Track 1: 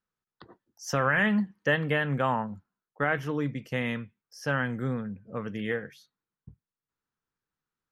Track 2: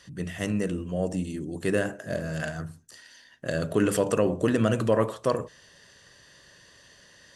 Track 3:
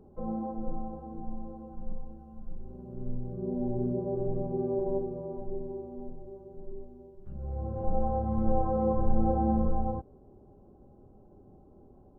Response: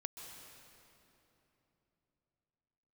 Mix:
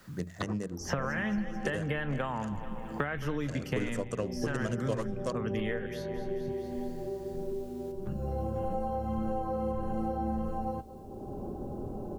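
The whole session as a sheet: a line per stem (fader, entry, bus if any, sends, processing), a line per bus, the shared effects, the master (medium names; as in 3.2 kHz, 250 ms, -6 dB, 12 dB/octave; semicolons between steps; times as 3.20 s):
-0.5 dB, 0.00 s, send -17.5 dB, echo send -15.5 dB, compression, threshold -30 dBFS, peak gain reduction 10 dB
-5.5 dB, 0.00 s, no send, no echo send, local Wiener filter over 15 samples; peaking EQ 6.6 kHz +11 dB 0.59 oct; upward expansion 2.5:1, over -35 dBFS
-6.5 dB, 0.80 s, no send, echo send -21.5 dB, none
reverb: on, RT60 3.3 s, pre-delay 120 ms
echo: feedback delay 219 ms, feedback 37%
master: three bands compressed up and down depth 100%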